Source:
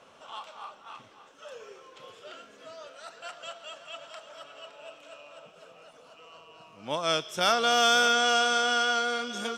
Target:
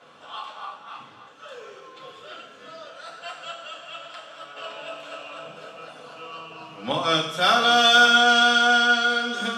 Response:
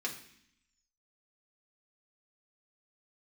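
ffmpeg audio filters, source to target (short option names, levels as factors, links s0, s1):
-filter_complex "[0:a]asettb=1/sr,asplit=3[s0][s1][s2];[s0]atrim=end=4.564[s3];[s1]atrim=start=4.56:end=6.92,asetpts=PTS-STARTPTS,afade=t=in:d=0.004:c=qsin,afade=t=out:st=2.356:d=0.004:c=qsin,acontrast=54[s4];[s2]atrim=start=6.916[s5];[s3][s4]acrossfade=d=0.004:c1=hsin:c2=qsin[s6];[s6][s5]acrossfade=d=0.004:c1=qsin:c2=hsin[s7];[1:a]atrim=start_sample=2205,asetrate=29106,aresample=44100[s8];[s7][s8]afir=irnorm=-1:irlink=0"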